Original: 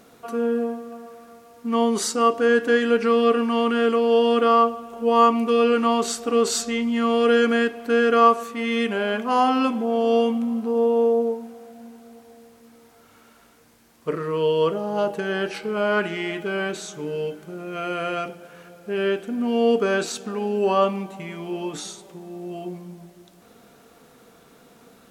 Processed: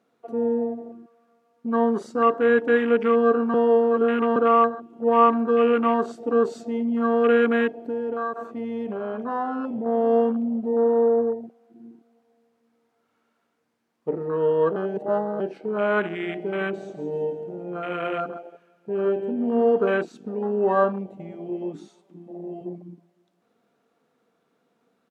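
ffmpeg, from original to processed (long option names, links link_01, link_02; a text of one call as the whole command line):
ffmpeg -i in.wav -filter_complex "[0:a]asettb=1/sr,asplit=3[link_01][link_02][link_03];[link_01]atrim=end=7.714[link_04];[link_02]atrim=start=7.71:end=9.86,asetpts=PTS-STARTPTS,afade=type=in:duration=0.004:curve=qsin,afade=type=out:start_time=2.146:duration=0.004:curve=qsin,acompressor=threshold=-24dB:ratio=4:attack=3.2:release=140:knee=1:detection=peak[link_05];[link_03]atrim=start=9.856[link_06];[link_04][link_05]acrossfade=duration=0.004:curve1=hsin:curve2=qsin[link_07];[link_07][link_06]acrossfade=duration=0.004:curve1=qsin:curve2=hsin,asettb=1/sr,asplit=3[link_08][link_09][link_10];[link_08]atrim=end=16.064[link_11];[link_09]atrim=start=16.06:end=19.9,asetpts=PTS-STARTPTS,afade=type=in:duration=0.004:curve=qsin,afade=type=out:start_time=3.836:duration=0.004:curve=qsin,aecho=1:1:165|330|495|660|825:0.355|0.163|0.0751|0.0345|0.0159,atrim=end_sample=169344[link_12];[link_10]atrim=start=19.896[link_13];[link_11][link_12]acrossfade=duration=0.004:curve1=hsin:curve2=qsin[link_14];[link_14][link_13]acrossfade=duration=0.004:curve1=qsin:curve2=hsin,asplit=2[link_15][link_16];[link_16]afade=type=in:start_time=21.21:duration=0.01,afade=type=out:start_time=21.7:duration=0.01,aecho=0:1:310|620|930:0.199526|0.0698342|0.024442[link_17];[link_15][link_17]amix=inputs=2:normalize=0,asplit=5[link_18][link_19][link_20][link_21][link_22];[link_18]atrim=end=3.542[link_23];[link_19]atrim=start=3.538:end=4.362,asetpts=PTS-STARTPTS,areverse[link_24];[link_20]atrim=start=4.358:end=14.762[link_25];[link_21]atrim=start=14.758:end=15.402,asetpts=PTS-STARTPTS,areverse[link_26];[link_22]atrim=start=15.398[link_27];[link_23][link_24]acrossfade=duration=0.004:curve1=hsin:curve2=hsin[link_28];[link_28][link_25]acrossfade=duration=0.004:curve1=hsin:curve2=hsin[link_29];[link_29][link_26]acrossfade=duration=0.004:curve1=hsin:curve2=hsin[link_30];[link_30][link_27]acrossfade=duration=0.004:curve1=hsin:curve2=hsin,lowpass=frequency=2700:poles=1,afwtdn=0.0398,highpass=160" out.wav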